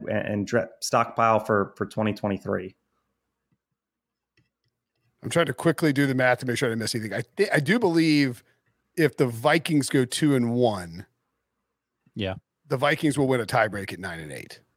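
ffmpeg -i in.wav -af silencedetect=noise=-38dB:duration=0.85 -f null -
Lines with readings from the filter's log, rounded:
silence_start: 2.68
silence_end: 5.23 | silence_duration: 2.55
silence_start: 11.02
silence_end: 12.17 | silence_duration: 1.14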